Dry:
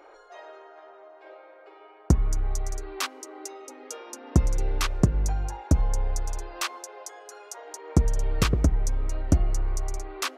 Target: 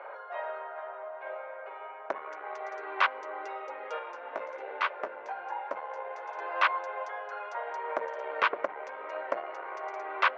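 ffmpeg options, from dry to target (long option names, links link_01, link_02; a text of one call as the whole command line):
ffmpeg -i in.wav -filter_complex "[0:a]asoftclip=type=tanh:threshold=-19dB,asettb=1/sr,asplit=3[link_01][link_02][link_03];[link_01]atrim=end=3.994[link_04];[link_02]atrim=start=3.99:end=6.39,asetpts=PTS-STARTPTS,afade=type=in:duration=0.004:curve=qsin,afade=type=out:start_time=2.396:duration=0.004:curve=qsin,flanger=delay=10:depth=7.4:regen=-38:speed=1.2:shape=sinusoidal[link_05];[link_03]atrim=start=6.386[link_06];[link_04][link_05]acrossfade=duration=0.004:curve1=hsin:curve2=qsin[link_07];[link_07][link_06]acrossfade=duration=0.004:curve1=qsin:curve2=hsin,highpass=frequency=490:width=0.5412,highpass=frequency=490:width=1.3066,equalizer=frequency=570:width_type=q:width=4:gain=8,equalizer=frequency=990:width_type=q:width=4:gain=8,equalizer=frequency=1500:width_type=q:width=4:gain=7,equalizer=frequency=2100:width_type=q:width=4:gain=4,lowpass=frequency=3000:width=0.5412,lowpass=frequency=3000:width=1.3066,volume=3.5dB" out.wav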